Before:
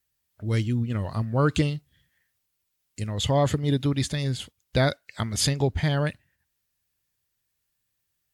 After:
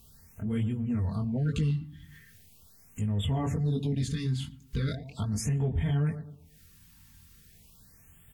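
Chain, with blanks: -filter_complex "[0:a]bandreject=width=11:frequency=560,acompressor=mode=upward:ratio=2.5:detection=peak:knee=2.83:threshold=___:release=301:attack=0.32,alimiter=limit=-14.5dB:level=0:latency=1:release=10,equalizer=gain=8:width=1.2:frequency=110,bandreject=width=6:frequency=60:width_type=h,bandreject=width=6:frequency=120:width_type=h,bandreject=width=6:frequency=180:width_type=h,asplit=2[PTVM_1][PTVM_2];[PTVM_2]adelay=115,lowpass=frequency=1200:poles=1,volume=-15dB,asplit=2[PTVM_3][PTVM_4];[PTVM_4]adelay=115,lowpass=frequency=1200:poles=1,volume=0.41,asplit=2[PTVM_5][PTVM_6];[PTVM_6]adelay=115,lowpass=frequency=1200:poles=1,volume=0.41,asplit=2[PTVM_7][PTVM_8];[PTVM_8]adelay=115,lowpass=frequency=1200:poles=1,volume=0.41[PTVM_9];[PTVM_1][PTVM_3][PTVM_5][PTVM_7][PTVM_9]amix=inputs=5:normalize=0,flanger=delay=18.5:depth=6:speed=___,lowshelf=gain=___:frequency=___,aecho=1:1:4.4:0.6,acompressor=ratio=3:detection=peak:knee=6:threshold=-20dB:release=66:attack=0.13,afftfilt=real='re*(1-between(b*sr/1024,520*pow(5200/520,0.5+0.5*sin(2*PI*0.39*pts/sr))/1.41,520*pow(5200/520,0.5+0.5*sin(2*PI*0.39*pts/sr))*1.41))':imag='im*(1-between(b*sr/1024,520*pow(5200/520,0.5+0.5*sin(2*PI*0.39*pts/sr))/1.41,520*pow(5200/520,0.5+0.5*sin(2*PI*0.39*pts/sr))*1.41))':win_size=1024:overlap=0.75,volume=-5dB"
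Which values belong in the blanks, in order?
-26dB, 1.3, 11.5, 260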